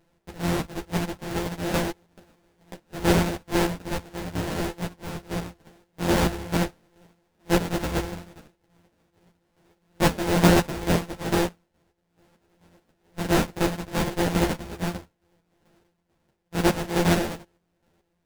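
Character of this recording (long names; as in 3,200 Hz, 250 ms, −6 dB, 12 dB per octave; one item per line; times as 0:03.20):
a buzz of ramps at a fixed pitch in blocks of 256 samples
chopped level 2.3 Hz, depth 60%, duty 40%
aliases and images of a low sample rate 1,200 Hz, jitter 20%
a shimmering, thickened sound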